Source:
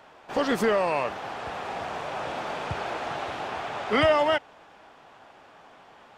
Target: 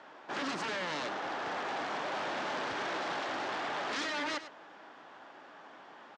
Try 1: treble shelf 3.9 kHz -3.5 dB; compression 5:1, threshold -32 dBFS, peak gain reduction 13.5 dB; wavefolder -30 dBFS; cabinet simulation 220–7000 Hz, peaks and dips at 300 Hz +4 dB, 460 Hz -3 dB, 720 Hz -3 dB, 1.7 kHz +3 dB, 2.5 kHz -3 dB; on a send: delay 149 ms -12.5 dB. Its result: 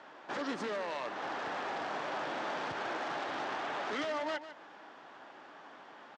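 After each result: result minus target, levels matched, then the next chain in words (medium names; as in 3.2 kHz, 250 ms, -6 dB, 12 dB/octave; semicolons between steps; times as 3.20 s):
echo 46 ms late; compression: peak gain reduction +5.5 dB
treble shelf 3.9 kHz -3.5 dB; compression 5:1, threshold -32 dBFS, peak gain reduction 13.5 dB; wavefolder -30 dBFS; cabinet simulation 220–7000 Hz, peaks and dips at 300 Hz +4 dB, 460 Hz -3 dB, 720 Hz -3 dB, 1.7 kHz +3 dB, 2.5 kHz -3 dB; on a send: delay 103 ms -12.5 dB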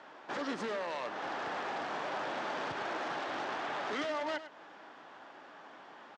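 compression: peak gain reduction +5.5 dB
treble shelf 3.9 kHz -3.5 dB; compression 5:1, threshold -25 dBFS, peak gain reduction 7.5 dB; wavefolder -30 dBFS; cabinet simulation 220–7000 Hz, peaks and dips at 300 Hz +4 dB, 460 Hz -3 dB, 720 Hz -3 dB, 1.7 kHz +3 dB, 2.5 kHz -3 dB; on a send: delay 103 ms -12.5 dB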